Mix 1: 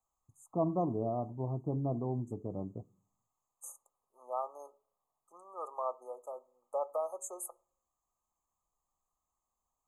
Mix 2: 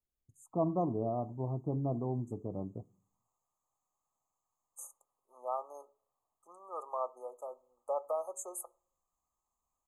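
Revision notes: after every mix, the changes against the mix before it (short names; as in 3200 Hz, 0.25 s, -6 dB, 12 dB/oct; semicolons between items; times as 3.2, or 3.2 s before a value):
second voice: entry +1.15 s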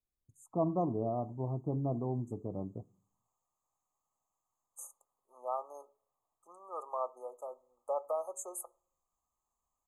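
none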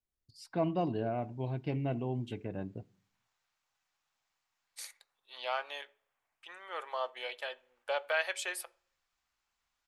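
master: remove brick-wall FIR band-stop 1300–6200 Hz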